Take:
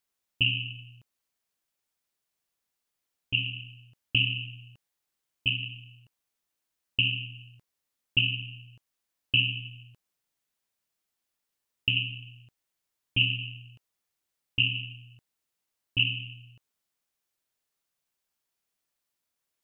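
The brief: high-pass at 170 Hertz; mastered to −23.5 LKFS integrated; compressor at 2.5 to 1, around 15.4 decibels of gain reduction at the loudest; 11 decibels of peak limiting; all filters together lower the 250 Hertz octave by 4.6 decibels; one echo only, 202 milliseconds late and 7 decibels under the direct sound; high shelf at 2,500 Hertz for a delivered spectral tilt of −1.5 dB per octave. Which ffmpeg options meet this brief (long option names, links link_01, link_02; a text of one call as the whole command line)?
ffmpeg -i in.wav -af "highpass=170,equalizer=frequency=250:width_type=o:gain=-3.5,highshelf=frequency=2500:gain=-6.5,acompressor=threshold=-48dB:ratio=2.5,alimiter=level_in=13.5dB:limit=-24dB:level=0:latency=1,volume=-13.5dB,aecho=1:1:202:0.447,volume=26.5dB" out.wav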